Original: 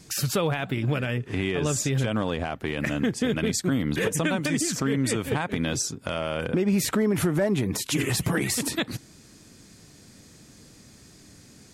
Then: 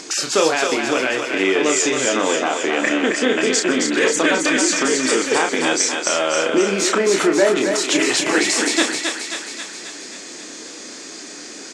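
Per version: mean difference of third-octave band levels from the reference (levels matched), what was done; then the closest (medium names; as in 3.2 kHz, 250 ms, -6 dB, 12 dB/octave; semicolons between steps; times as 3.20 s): 10.5 dB: Chebyshev band-pass 310–7400 Hz, order 3; in parallel at -0.5 dB: upward compressor, threshold -31 dBFS; on the sum: doubling 31 ms -5.5 dB; thinning echo 268 ms, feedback 63%, high-pass 520 Hz, level -4 dB; trim +3.5 dB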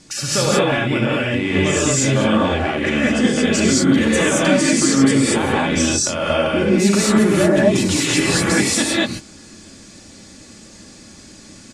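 7.0 dB: low-pass 9.1 kHz 24 dB/octave; peaking EQ 64 Hz -6 dB 1.9 oct; comb 3.5 ms, depth 41%; gated-style reverb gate 250 ms rising, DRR -6.5 dB; trim +3 dB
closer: second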